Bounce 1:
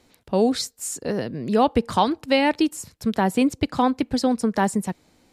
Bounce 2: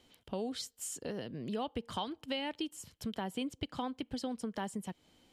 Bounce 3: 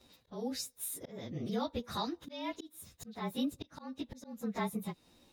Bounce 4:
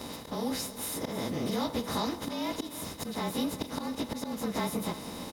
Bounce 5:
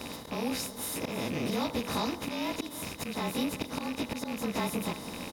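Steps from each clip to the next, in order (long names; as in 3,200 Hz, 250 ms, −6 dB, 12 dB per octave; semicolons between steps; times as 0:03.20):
parametric band 3,100 Hz +14 dB 0.21 octaves; downward compressor 2.5 to 1, threshold −31 dBFS, peak gain reduction 12.5 dB; level −8 dB
partials spread apart or drawn together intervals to 108%; volume swells 280 ms; level +5.5 dB
compressor on every frequency bin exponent 0.4; single-tap delay 327 ms −15 dB
loose part that buzzes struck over −42 dBFS, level −30 dBFS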